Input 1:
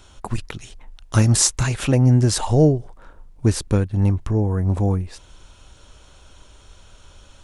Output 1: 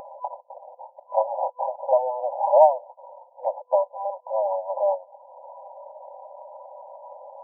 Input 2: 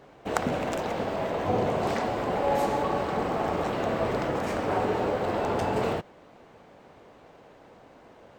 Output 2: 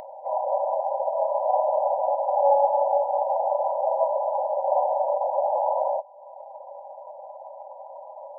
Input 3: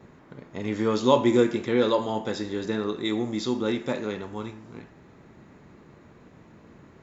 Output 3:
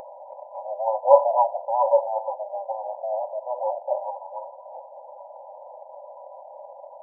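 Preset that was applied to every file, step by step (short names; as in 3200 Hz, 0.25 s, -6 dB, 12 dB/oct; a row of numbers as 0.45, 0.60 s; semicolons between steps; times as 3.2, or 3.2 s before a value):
minimum comb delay 5 ms; FFT band-pass 500–1000 Hz; upward compressor, threshold -41 dBFS; match loudness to -24 LUFS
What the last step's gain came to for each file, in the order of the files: +9.5, +9.5, +9.5 dB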